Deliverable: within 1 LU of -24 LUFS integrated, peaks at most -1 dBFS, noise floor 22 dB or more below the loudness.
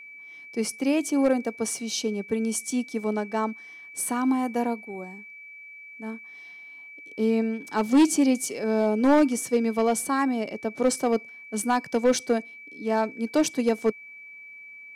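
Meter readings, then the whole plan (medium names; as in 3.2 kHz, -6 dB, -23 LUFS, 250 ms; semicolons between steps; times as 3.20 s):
clipped samples 0.5%; clipping level -13.5 dBFS; steady tone 2.3 kHz; tone level -42 dBFS; loudness -25.5 LUFS; peak level -13.5 dBFS; loudness target -24.0 LUFS
-> clip repair -13.5 dBFS; band-stop 2.3 kHz, Q 30; trim +1.5 dB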